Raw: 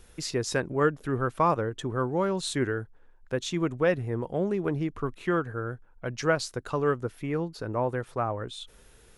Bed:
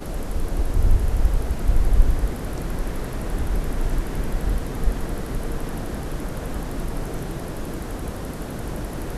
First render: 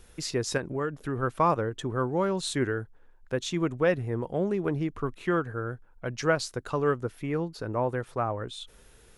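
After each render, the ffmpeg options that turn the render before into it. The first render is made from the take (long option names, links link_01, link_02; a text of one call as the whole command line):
ffmpeg -i in.wav -filter_complex "[0:a]asettb=1/sr,asplit=3[link_01][link_02][link_03];[link_01]atrim=end=0.574[link_04];[link_02]atrim=start=0.57:end=1.23,asetpts=PTS-STARTPTS,afade=type=in:duration=0.004:curve=qsin,afade=type=out:start_time=0.656:duration=0.004:curve=qsin,acompressor=threshold=-26dB:ratio=4:attack=3.2:release=140:knee=1:detection=peak[link_05];[link_03]atrim=start=1.226[link_06];[link_04][link_05]acrossfade=duration=0.004:curve1=hsin:curve2=qsin[link_07];[link_07][link_06]acrossfade=duration=0.004:curve1=qsin:curve2=hsin" out.wav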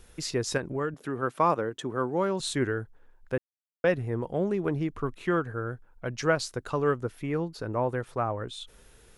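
ffmpeg -i in.wav -filter_complex "[0:a]asettb=1/sr,asplit=3[link_01][link_02][link_03];[link_01]atrim=end=0.944[link_04];[link_02]atrim=start=0.94:end=2.4,asetpts=PTS-STARTPTS,afade=type=in:duration=0.004:curve=qsin,afade=type=out:start_time=1.456:duration=0.004:curve=qsin,highpass=170[link_05];[link_03]atrim=start=2.396[link_06];[link_04][link_05]acrossfade=duration=0.004:curve1=hsin:curve2=qsin[link_07];[link_07][link_06]acrossfade=duration=0.004:curve1=qsin:curve2=hsin,asplit=3[link_08][link_09][link_10];[link_08]atrim=end=3.38,asetpts=PTS-STARTPTS,afade=type=out:start_time=3.376:duration=0.004:curve=hsin[link_11];[link_09]atrim=start=3.38:end=3.84,asetpts=PTS-STARTPTS,volume=0[link_12];[link_10]atrim=start=3.84,asetpts=PTS-STARTPTS,afade=type=in:duration=0.004:curve=hsin[link_13];[link_11][link_12][link_13]concat=n=3:v=0:a=1" out.wav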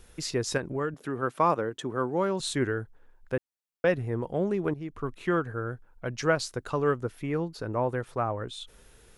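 ffmpeg -i in.wav -filter_complex "[0:a]asplit=2[link_01][link_02];[link_01]atrim=end=4.74,asetpts=PTS-STARTPTS,afade=type=out:start_time=4.736:duration=0.004:curve=hsin:silence=0.211349[link_03];[link_02]atrim=start=4.74,asetpts=PTS-STARTPTS,afade=type=in:duration=0.59:curve=qsin:silence=0.211349[link_04];[link_03][link_04]concat=n=2:v=0:a=1" out.wav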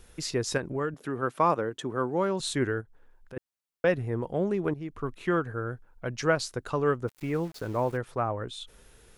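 ffmpeg -i in.wav -filter_complex "[0:a]asplit=3[link_01][link_02][link_03];[link_01]afade=type=out:start_time=2.8:duration=0.02[link_04];[link_02]acompressor=threshold=-51dB:ratio=2:attack=3.2:release=140:knee=1:detection=peak,afade=type=in:start_time=2.8:duration=0.02,afade=type=out:start_time=3.36:duration=0.02[link_05];[link_03]afade=type=in:start_time=3.36:duration=0.02[link_06];[link_04][link_05][link_06]amix=inputs=3:normalize=0,asplit=3[link_07][link_08][link_09];[link_07]afade=type=out:start_time=7.07:duration=0.02[link_10];[link_08]aeval=exprs='val(0)*gte(abs(val(0)),0.00631)':channel_layout=same,afade=type=in:start_time=7.07:duration=0.02,afade=type=out:start_time=7.96:duration=0.02[link_11];[link_09]afade=type=in:start_time=7.96:duration=0.02[link_12];[link_10][link_11][link_12]amix=inputs=3:normalize=0" out.wav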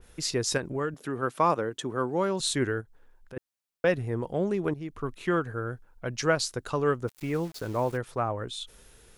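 ffmpeg -i in.wav -af "adynamicequalizer=threshold=0.00447:dfrequency=3000:dqfactor=0.7:tfrequency=3000:tqfactor=0.7:attack=5:release=100:ratio=0.375:range=2.5:mode=boostabove:tftype=highshelf" out.wav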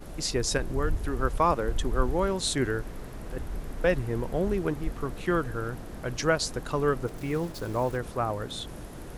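ffmpeg -i in.wav -i bed.wav -filter_complex "[1:a]volume=-11.5dB[link_01];[0:a][link_01]amix=inputs=2:normalize=0" out.wav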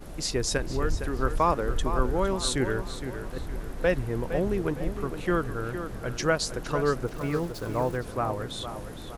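ffmpeg -i in.wav -filter_complex "[0:a]asplit=2[link_01][link_02];[link_02]adelay=461,lowpass=frequency=4300:poles=1,volume=-9.5dB,asplit=2[link_03][link_04];[link_04]adelay=461,lowpass=frequency=4300:poles=1,volume=0.41,asplit=2[link_05][link_06];[link_06]adelay=461,lowpass=frequency=4300:poles=1,volume=0.41,asplit=2[link_07][link_08];[link_08]adelay=461,lowpass=frequency=4300:poles=1,volume=0.41[link_09];[link_01][link_03][link_05][link_07][link_09]amix=inputs=5:normalize=0" out.wav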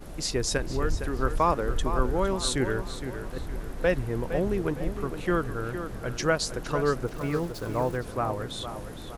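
ffmpeg -i in.wav -af anull out.wav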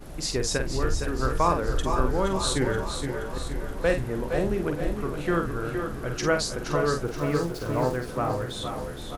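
ffmpeg -i in.wav -filter_complex "[0:a]asplit=2[link_01][link_02];[link_02]adelay=47,volume=-6.5dB[link_03];[link_01][link_03]amix=inputs=2:normalize=0,aecho=1:1:475|950|1425|1900|2375|2850:0.355|0.195|0.107|0.059|0.0325|0.0179" out.wav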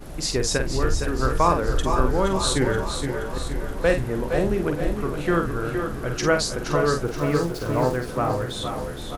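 ffmpeg -i in.wav -af "volume=3.5dB" out.wav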